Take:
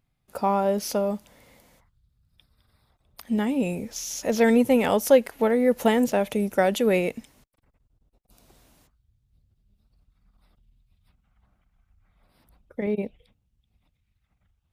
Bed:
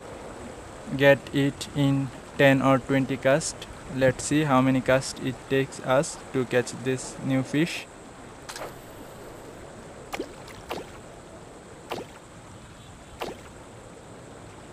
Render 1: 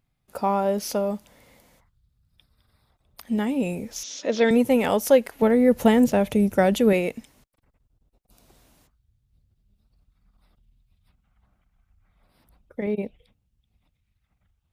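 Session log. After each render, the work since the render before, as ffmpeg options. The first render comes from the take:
ffmpeg -i in.wav -filter_complex "[0:a]asettb=1/sr,asplit=3[link_01][link_02][link_03];[link_01]atrim=end=4.034[link_04];[link_02]atrim=start=4.03:end=4.51,asetpts=PTS-STARTPTS,afade=type=in:duration=0.004:curve=qsin,afade=type=out:start_time=0.476:duration=0.004:curve=qsin,highpass=250,equalizer=frequency=290:width_type=q:width=4:gain=6,equalizer=frequency=550:width_type=q:width=4:gain=3,equalizer=frequency=790:width_type=q:width=4:gain=-7,equalizer=frequency=3600:width_type=q:width=4:gain=8,lowpass=frequency=5700:width=0.5412,lowpass=frequency=5700:width=1.3066[link_05];[link_03]atrim=start=4.506[link_06];[link_04][link_05]acrossfade=duration=0.004:curve1=hsin:curve2=qsin[link_07];[link_07][link_06]acrossfade=duration=0.004:curve1=qsin:curve2=hsin,asettb=1/sr,asplit=3[link_08][link_09][link_10];[link_08]atrim=end=5.424[link_11];[link_09]atrim=start=5.42:end=6.93,asetpts=PTS-STARTPTS,afade=type=in:duration=0.004:curve=qsin,afade=type=out:start_time=1.506:duration=0.004:curve=qsin,equalizer=frequency=73:width_type=o:width=2.7:gain=13.5[link_12];[link_10]atrim=start=6.926[link_13];[link_11][link_12]acrossfade=duration=0.004:curve1=hsin:curve2=qsin[link_14];[link_14][link_13]acrossfade=duration=0.004:curve1=qsin:curve2=hsin" out.wav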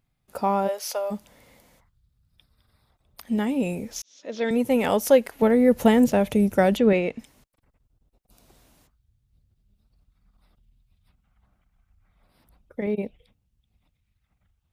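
ffmpeg -i in.wav -filter_complex "[0:a]asplit=3[link_01][link_02][link_03];[link_01]afade=type=out:start_time=0.67:duration=0.02[link_04];[link_02]highpass=frequency=550:width=0.5412,highpass=frequency=550:width=1.3066,afade=type=in:start_time=0.67:duration=0.02,afade=type=out:start_time=1.1:duration=0.02[link_05];[link_03]afade=type=in:start_time=1.1:duration=0.02[link_06];[link_04][link_05][link_06]amix=inputs=3:normalize=0,asplit=3[link_07][link_08][link_09];[link_07]afade=type=out:start_time=6.76:duration=0.02[link_10];[link_08]lowpass=4100,afade=type=in:start_time=6.76:duration=0.02,afade=type=out:start_time=7.18:duration=0.02[link_11];[link_09]afade=type=in:start_time=7.18:duration=0.02[link_12];[link_10][link_11][link_12]amix=inputs=3:normalize=0,asplit=2[link_13][link_14];[link_13]atrim=end=4.02,asetpts=PTS-STARTPTS,afade=type=out:start_time=4.016:duration=0.004:curve=hsin[link_15];[link_14]atrim=start=4.02,asetpts=PTS-STARTPTS,afade=type=in:duration=0.87[link_16];[link_15][link_16]concat=n=2:v=0:a=1" out.wav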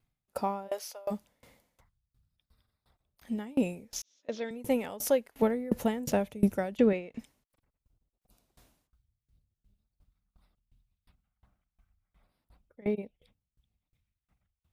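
ffmpeg -i in.wav -af "aeval=exprs='val(0)*pow(10,-25*if(lt(mod(2.8*n/s,1),2*abs(2.8)/1000),1-mod(2.8*n/s,1)/(2*abs(2.8)/1000),(mod(2.8*n/s,1)-2*abs(2.8)/1000)/(1-2*abs(2.8)/1000))/20)':channel_layout=same" out.wav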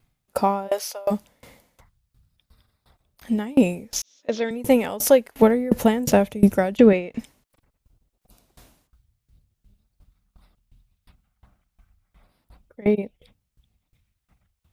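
ffmpeg -i in.wav -af "volume=11dB,alimiter=limit=-3dB:level=0:latency=1" out.wav

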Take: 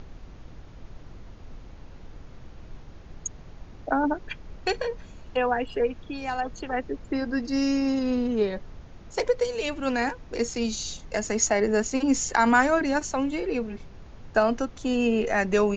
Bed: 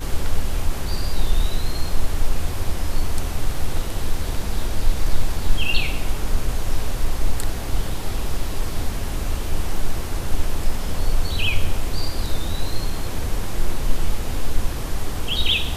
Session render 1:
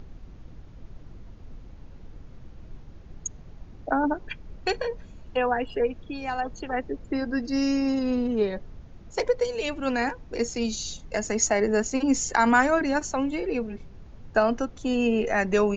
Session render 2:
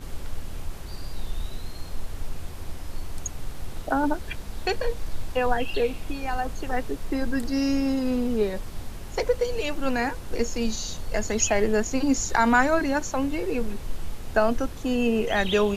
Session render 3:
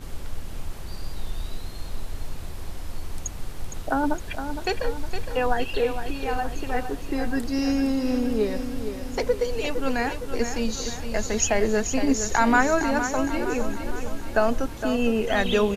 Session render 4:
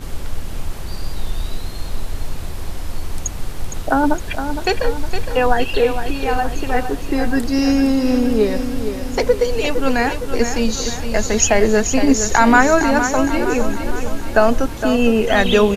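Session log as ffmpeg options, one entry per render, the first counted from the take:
ffmpeg -i in.wav -af "afftdn=noise_reduction=6:noise_floor=-46" out.wav
ffmpeg -i in.wav -i bed.wav -filter_complex "[1:a]volume=-12dB[link_01];[0:a][link_01]amix=inputs=2:normalize=0" out.wav
ffmpeg -i in.wav -af "aecho=1:1:462|924|1386|1848|2310|2772:0.355|0.195|0.107|0.059|0.0325|0.0179" out.wav
ffmpeg -i in.wav -af "volume=8dB,alimiter=limit=-1dB:level=0:latency=1" out.wav

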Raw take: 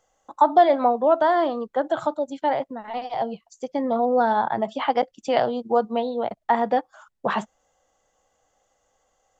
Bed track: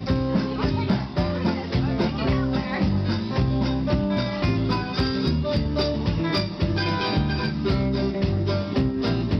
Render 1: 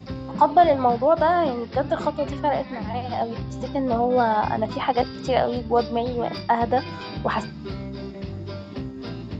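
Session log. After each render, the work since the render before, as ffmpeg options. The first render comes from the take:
ffmpeg -i in.wav -i bed.wav -filter_complex "[1:a]volume=-10dB[link_01];[0:a][link_01]amix=inputs=2:normalize=0" out.wav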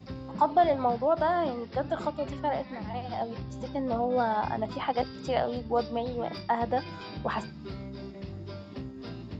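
ffmpeg -i in.wav -af "volume=-7dB" out.wav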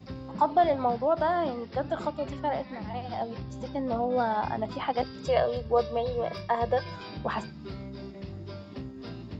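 ffmpeg -i in.wav -filter_complex "[0:a]asettb=1/sr,asplit=3[link_01][link_02][link_03];[link_01]atrim=end=5.254[link_04];[link_02]atrim=start=5.25:end=6.96,asetpts=PTS-STARTPTS,afade=type=in:duration=0.004:curve=qsin,afade=type=out:start_time=1.706:duration=0.004:curve=qsin,aecho=1:1:1.8:0.79,atrim=end_sample=75411[link_05];[link_03]atrim=start=6.956[link_06];[link_04][link_05]acrossfade=duration=0.004:curve1=hsin:curve2=qsin[link_07];[link_07][link_06]acrossfade=duration=0.004:curve1=qsin:curve2=hsin" out.wav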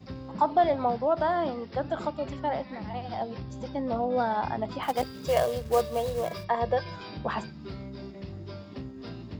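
ffmpeg -i in.wav -filter_complex "[0:a]asplit=3[link_01][link_02][link_03];[link_01]afade=type=out:start_time=4.82:duration=0.02[link_04];[link_02]acrusher=bits=4:mode=log:mix=0:aa=0.000001,afade=type=in:start_time=4.82:duration=0.02,afade=type=out:start_time=6.43:duration=0.02[link_05];[link_03]afade=type=in:start_time=6.43:duration=0.02[link_06];[link_04][link_05][link_06]amix=inputs=3:normalize=0" out.wav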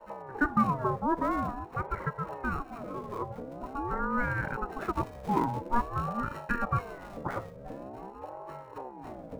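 ffmpeg -i in.wav -filter_complex "[0:a]acrossover=split=640|1700[link_01][link_02][link_03];[link_03]acrusher=samples=32:mix=1:aa=0.000001[link_04];[link_01][link_02][link_04]amix=inputs=3:normalize=0,aeval=exprs='val(0)*sin(2*PI*530*n/s+530*0.4/0.47*sin(2*PI*0.47*n/s))':channel_layout=same" out.wav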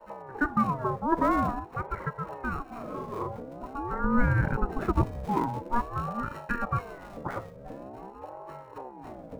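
ffmpeg -i in.wav -filter_complex "[0:a]asettb=1/sr,asplit=3[link_01][link_02][link_03];[link_01]atrim=end=1.124[link_04];[link_02]atrim=start=1.12:end=1.6,asetpts=PTS-STARTPTS,afade=type=in:duration=0.004:curve=qsin,afade=type=out:start_time=0.476:duration=0.004:curve=qsin,acontrast=27[link_05];[link_03]atrim=start=1.596[link_06];[link_04][link_05]acrossfade=duration=0.004:curve1=hsin:curve2=qsin[link_07];[link_07][link_06]acrossfade=duration=0.004:curve1=qsin:curve2=hsin,asettb=1/sr,asplit=3[link_08][link_09][link_10];[link_08]atrim=end=2.674[link_11];[link_09]atrim=start=2.67:end=3.37,asetpts=PTS-STARTPTS,afade=type=in:duration=0.004:curve=qsin,afade=type=out:start_time=0.696:duration=0.004:curve=qsin,asplit=2[link_12][link_13];[link_13]adelay=43,volume=-2dB[link_14];[link_12][link_14]amix=inputs=2:normalize=0,atrim=end_sample=30870[link_15];[link_10]atrim=start=3.366[link_16];[link_11][link_15]acrossfade=duration=0.004:curve1=hsin:curve2=qsin[link_17];[link_17][link_16]acrossfade=duration=0.004:curve1=qsin:curve2=hsin,asettb=1/sr,asplit=3[link_18][link_19][link_20];[link_18]atrim=end=4.044[link_21];[link_19]atrim=start=4.04:end=5.25,asetpts=PTS-STARTPTS,afade=type=in:duration=0.004:curve=qsin,afade=type=out:start_time=1.206:duration=0.004:curve=qsin,lowshelf=frequency=340:gain=12[link_22];[link_20]atrim=start=5.246[link_23];[link_21][link_22]acrossfade=duration=0.004:curve1=hsin:curve2=qsin[link_24];[link_24][link_23]acrossfade=duration=0.004:curve1=qsin:curve2=hsin" out.wav

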